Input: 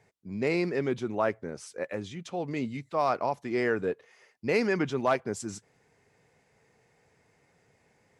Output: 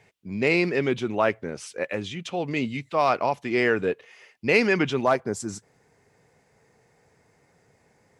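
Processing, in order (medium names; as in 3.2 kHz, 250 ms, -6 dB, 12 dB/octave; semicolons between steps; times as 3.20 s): peaking EQ 2.8 kHz +8.5 dB 0.9 oct, from 5.04 s -5 dB; trim +4.5 dB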